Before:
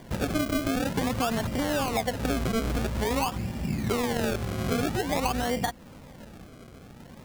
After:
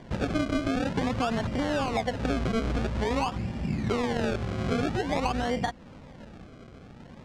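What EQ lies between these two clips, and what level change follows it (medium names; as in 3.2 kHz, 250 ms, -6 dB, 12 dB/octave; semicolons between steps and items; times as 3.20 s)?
distance through air 100 m; 0.0 dB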